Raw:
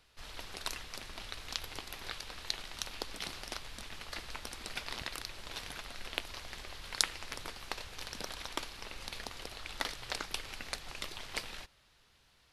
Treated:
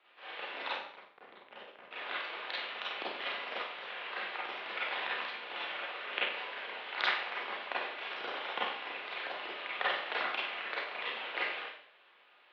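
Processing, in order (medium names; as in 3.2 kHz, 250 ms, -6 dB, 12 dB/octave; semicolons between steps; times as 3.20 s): 0.71–1.91 s: Schmitt trigger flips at -35 dBFS; mistuned SSB -120 Hz 540–3300 Hz; Schroeder reverb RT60 0.59 s, combs from 31 ms, DRR -7.5 dB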